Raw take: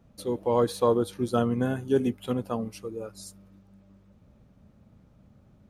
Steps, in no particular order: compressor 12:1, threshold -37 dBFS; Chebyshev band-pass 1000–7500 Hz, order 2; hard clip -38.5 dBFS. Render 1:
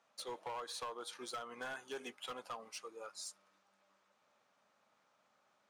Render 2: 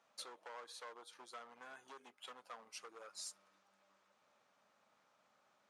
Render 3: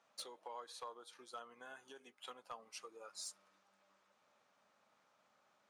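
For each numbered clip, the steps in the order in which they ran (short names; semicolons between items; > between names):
Chebyshev band-pass > compressor > hard clip; compressor > hard clip > Chebyshev band-pass; compressor > Chebyshev band-pass > hard clip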